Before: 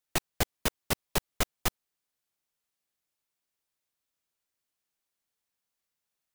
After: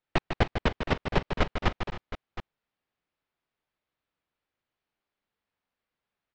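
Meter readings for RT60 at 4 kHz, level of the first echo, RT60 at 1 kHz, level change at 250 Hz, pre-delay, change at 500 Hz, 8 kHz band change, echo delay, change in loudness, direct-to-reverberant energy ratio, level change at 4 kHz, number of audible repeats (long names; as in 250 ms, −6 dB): no reverb audible, −7.5 dB, no reverb audible, +6.5 dB, no reverb audible, +6.0 dB, −18.5 dB, 150 ms, +2.0 dB, no reverb audible, −1.5 dB, 3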